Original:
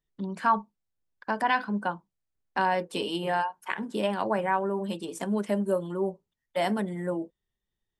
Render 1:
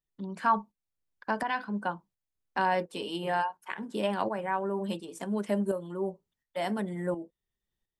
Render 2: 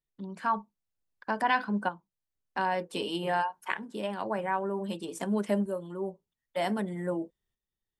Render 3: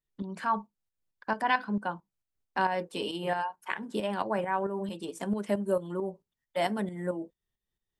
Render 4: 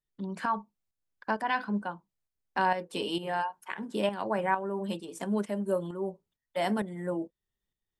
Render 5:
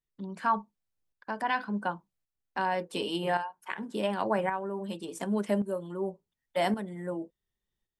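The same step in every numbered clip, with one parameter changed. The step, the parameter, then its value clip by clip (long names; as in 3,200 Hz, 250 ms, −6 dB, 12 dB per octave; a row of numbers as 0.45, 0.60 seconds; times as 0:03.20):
shaped tremolo, speed: 1.4, 0.53, 4.5, 2.2, 0.89 Hertz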